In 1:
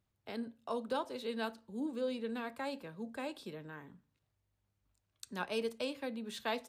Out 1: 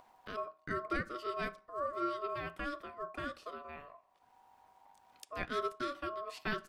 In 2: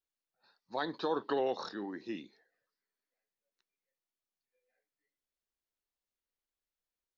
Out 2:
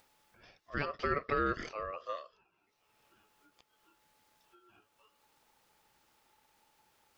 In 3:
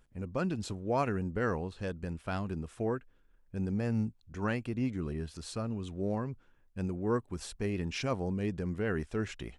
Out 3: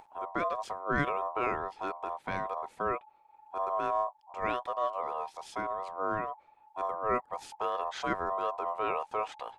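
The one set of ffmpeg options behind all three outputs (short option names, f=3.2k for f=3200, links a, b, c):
-af "highshelf=f=3.1k:g=-8.5,aeval=exprs='val(0)*sin(2*PI*860*n/s)':c=same,acompressor=mode=upward:threshold=-51dB:ratio=2.5,volume=3.5dB"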